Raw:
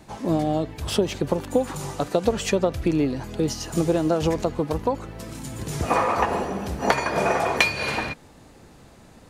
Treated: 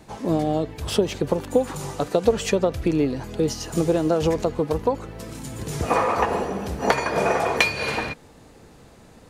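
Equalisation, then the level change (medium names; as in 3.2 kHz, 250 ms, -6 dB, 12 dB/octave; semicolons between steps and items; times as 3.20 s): peaking EQ 460 Hz +5 dB 0.22 oct; 0.0 dB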